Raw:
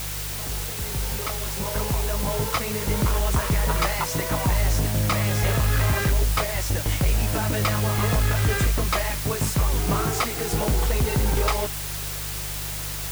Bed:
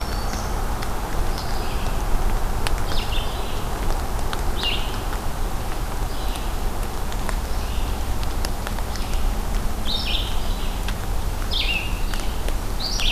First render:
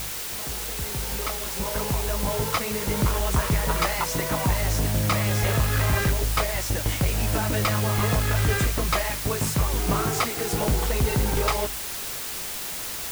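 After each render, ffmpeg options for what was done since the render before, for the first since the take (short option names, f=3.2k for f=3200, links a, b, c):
-af "bandreject=f=50:t=h:w=4,bandreject=f=100:t=h:w=4,bandreject=f=150:t=h:w=4"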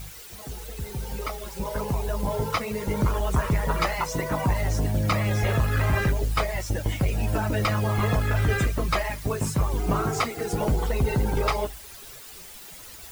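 -af "afftdn=nr=13:nf=-32"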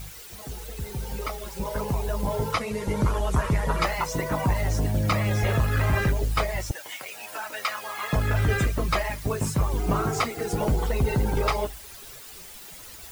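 -filter_complex "[0:a]asettb=1/sr,asplit=3[a][b][c];[a]atrim=end=2.534[d];[b]atrim=start=2.53:end=3.84,asetpts=PTS-STARTPTS,afade=t=in:d=0.004:c=qsin,afade=t=out:st=1.306:d=0.004:c=qsin,lowpass=f=12k:w=0.5412,lowpass=f=12k:w=1.3066[e];[c]atrim=start=3.836[f];[d][e]acrossfade=d=0.004:c1=hsin:c2=qsin[g];[g][f]acrossfade=d=0.004:c1=qsin:c2=hsin,asettb=1/sr,asplit=3[h][i][j];[h]atrim=end=6.714[k];[i]atrim=start=6.71:end=8.13,asetpts=PTS-STARTPTS,afade=t=in:d=0.004:c=qsin,afade=t=out:st=1.416:d=0.004:c=qsin,highpass=1k[l];[j]atrim=start=8.126[m];[k][l]acrossfade=d=0.004:c1=hsin:c2=qsin[n];[n][m]acrossfade=d=0.004:c1=qsin:c2=hsin"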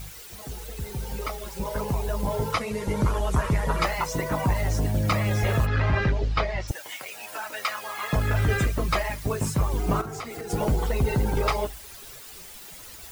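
-filter_complex "[0:a]asplit=3[a][b][c];[a]afade=t=out:st=5.65:d=0.02[d];[b]lowpass=f=5k:w=0.5412,lowpass=f=5k:w=1.3066,afade=t=in:st=5.65:d=0.02,afade=t=out:st=6.67:d=0.02[e];[c]afade=t=in:st=6.67:d=0.02[f];[d][e][f]amix=inputs=3:normalize=0,asettb=1/sr,asplit=3[g][h][i];[g]atrim=end=10.014[j];[h]atrim=start=10.01:end=10.5,asetpts=PTS-STARTPTS,afade=t=in:d=0.004:c=qsin,afade=t=out:st=0.486:d=0.004:c=qsin,acompressor=threshold=-31dB:ratio=10:attack=3.2:release=140:knee=1:detection=peak[k];[i]atrim=start=10.496[l];[j][k]acrossfade=d=0.004:c1=hsin:c2=qsin[m];[m][l]acrossfade=d=0.004:c1=qsin:c2=hsin"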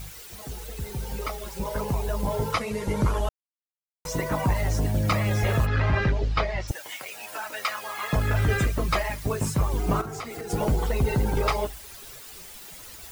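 -filter_complex "[0:a]asplit=3[a][b][c];[a]atrim=end=3.29,asetpts=PTS-STARTPTS,afade=t=out:st=3.286:d=0.004:c=hsin[d];[b]atrim=start=3.29:end=4.05,asetpts=PTS-STARTPTS,volume=0[e];[c]atrim=start=4.05,asetpts=PTS-STARTPTS,afade=t=in:d=0.004:c=hsin[f];[d][e][f]concat=n=3:v=0:a=1"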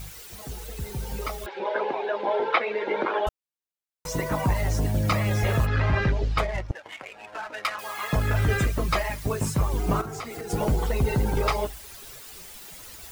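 -filter_complex "[0:a]asettb=1/sr,asplit=3[a][b][c];[a]atrim=end=1.464[d];[b]atrim=start=1.46:end=3.27,asetpts=PTS-STARTPTS,afade=t=in:d=0.004:c=qsin,afade=t=out:st=1.806:d=0.004:c=qsin,highpass=f=310:w=0.5412,highpass=f=310:w=1.3066,equalizer=f=360:t=q:w=4:g=8,equalizer=f=550:t=q:w=4:g=5,equalizer=f=790:t=q:w=4:g=8,equalizer=f=1.6k:t=q:w=4:g=10,equalizer=f=2.3k:t=q:w=4:g=6,equalizer=f=3.6k:t=q:w=4:g=6,lowpass=f=3.6k:w=0.5412,lowpass=f=3.6k:w=1.3066[e];[c]atrim=start=3.266[f];[d][e]acrossfade=d=0.004:c1=hsin:c2=qsin[g];[g][f]acrossfade=d=0.004:c1=qsin:c2=hsin,asettb=1/sr,asplit=3[h][i][j];[h]atrim=end=6.384[k];[i]atrim=start=6.38:end=7.79,asetpts=PTS-STARTPTS,afade=t=in:d=0.004:c=qsin,afade=t=out:st=1.406:d=0.004:c=qsin,adynamicsmooth=sensitivity=6:basefreq=1.2k[l];[j]atrim=start=7.786[m];[k][l]acrossfade=d=0.004:c1=hsin:c2=qsin[n];[n][m]acrossfade=d=0.004:c1=qsin:c2=hsin"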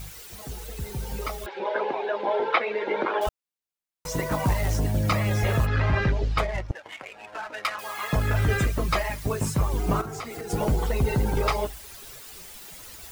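-filter_complex "[0:a]asettb=1/sr,asplit=3[a][b][c];[a]atrim=end=3.214[d];[b]atrim=start=3.21:end=4.77,asetpts=PTS-STARTPTS,afade=t=in:d=0.004:c=qsin,afade=t=out:st=1.556:d=0.004:c=qsin,acrusher=bits=4:mode=log:mix=0:aa=0.000001[e];[c]atrim=start=4.766[f];[d][e]acrossfade=d=0.004:c1=hsin:c2=qsin[g];[g][f]acrossfade=d=0.004:c1=qsin:c2=hsin"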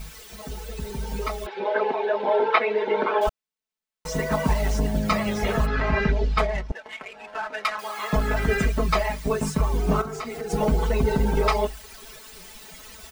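-af "equalizer=f=16k:w=0.37:g=-8.5,aecho=1:1:4.6:0.86"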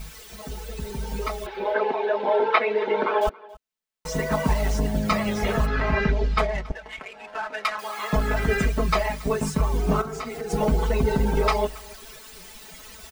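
-af "aecho=1:1:277:0.075"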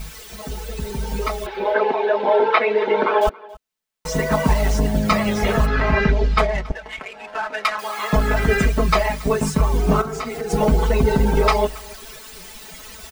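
-af "volume=5dB,alimiter=limit=-3dB:level=0:latency=1"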